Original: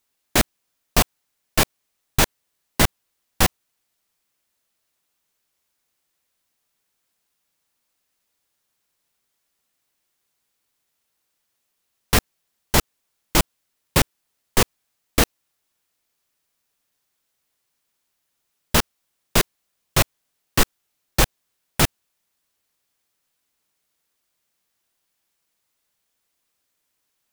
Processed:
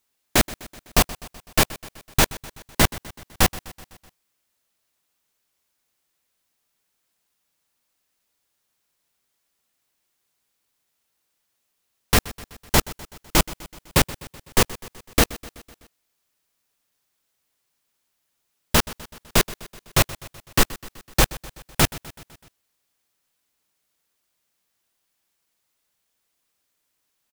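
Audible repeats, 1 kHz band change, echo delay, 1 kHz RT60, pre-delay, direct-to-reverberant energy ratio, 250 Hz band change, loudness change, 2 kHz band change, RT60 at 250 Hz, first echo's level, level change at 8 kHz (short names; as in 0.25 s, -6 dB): 4, 0.0 dB, 0.126 s, none, none, none, 0.0 dB, 0.0 dB, 0.0 dB, none, -18.5 dB, 0.0 dB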